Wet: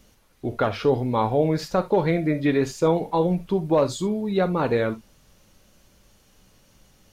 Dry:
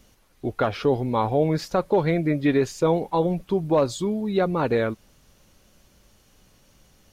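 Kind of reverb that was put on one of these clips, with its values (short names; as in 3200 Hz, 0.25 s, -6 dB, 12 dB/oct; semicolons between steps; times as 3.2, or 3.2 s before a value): non-linear reverb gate 90 ms flat, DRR 10.5 dB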